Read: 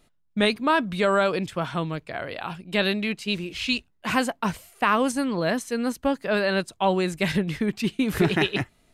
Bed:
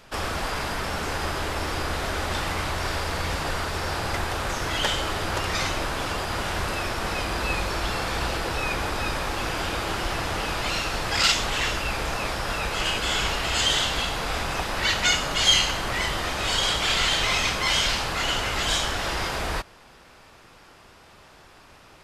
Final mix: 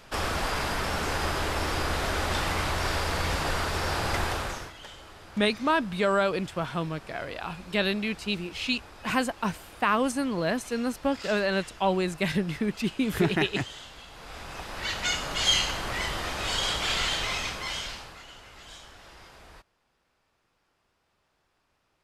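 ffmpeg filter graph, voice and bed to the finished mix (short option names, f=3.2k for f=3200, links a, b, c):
-filter_complex "[0:a]adelay=5000,volume=-3dB[a];[1:a]volume=15.5dB,afade=t=out:st=4.27:d=0.46:silence=0.1,afade=t=in:st=14.07:d=1.42:silence=0.158489,afade=t=out:st=16.96:d=1.29:silence=0.125893[b];[a][b]amix=inputs=2:normalize=0"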